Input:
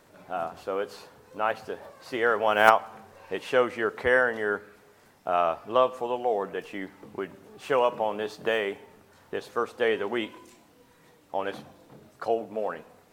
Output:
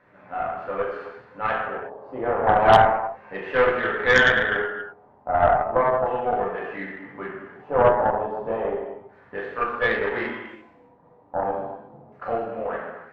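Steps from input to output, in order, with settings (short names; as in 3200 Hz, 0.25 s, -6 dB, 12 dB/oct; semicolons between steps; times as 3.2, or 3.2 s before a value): LFO low-pass square 0.33 Hz 840–1800 Hz; non-linear reverb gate 0.4 s falling, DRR -6.5 dB; added harmonics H 4 -14 dB, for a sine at 2.5 dBFS; gain -6.5 dB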